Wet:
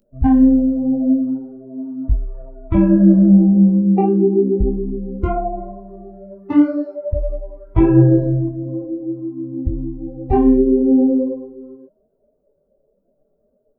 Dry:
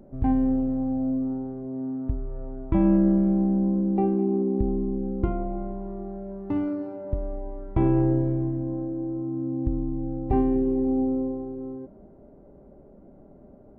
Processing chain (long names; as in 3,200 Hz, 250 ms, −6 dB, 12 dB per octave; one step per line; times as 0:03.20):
spectral dynamics exaggerated over time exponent 2
boost into a limiter +18 dB
micro pitch shift up and down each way 31 cents